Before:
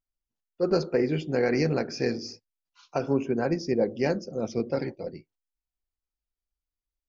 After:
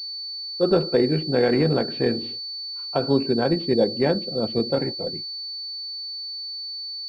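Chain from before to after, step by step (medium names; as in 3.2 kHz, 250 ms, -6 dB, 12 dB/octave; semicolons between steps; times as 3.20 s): class-D stage that switches slowly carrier 4.5 kHz; trim +5 dB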